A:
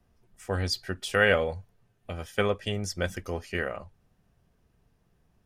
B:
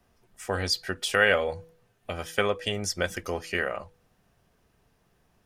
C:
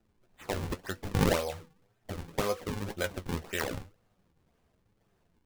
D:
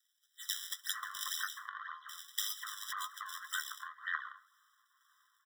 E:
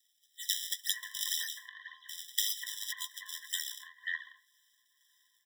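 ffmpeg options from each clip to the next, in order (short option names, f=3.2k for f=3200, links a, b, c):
-filter_complex "[0:a]lowshelf=f=270:g=-9.5,bandreject=f=163.4:t=h:w=4,bandreject=f=326.8:t=h:w=4,bandreject=f=490.2:t=h:w=4,asplit=2[a][b];[b]acompressor=threshold=-34dB:ratio=6,volume=1.5dB[c];[a][c]amix=inputs=2:normalize=0"
-af "highshelf=f=4.1k:g=-6,acrusher=samples=39:mix=1:aa=0.000001:lfo=1:lforange=62.4:lforate=1.9,flanger=delay=8.7:depth=5.2:regen=48:speed=1:shape=triangular"
-filter_complex "[0:a]acrossover=split=2400[a][b];[a]adelay=540[c];[c][b]amix=inputs=2:normalize=0,acompressor=threshold=-39dB:ratio=16,afftfilt=real='re*eq(mod(floor(b*sr/1024/1000),2),1)':imag='im*eq(mod(floor(b*sr/1024/1000),2),1)':win_size=1024:overlap=0.75,volume=12dB"
-af "asuperstop=centerf=1300:order=8:qfactor=1.5,volume=5.5dB"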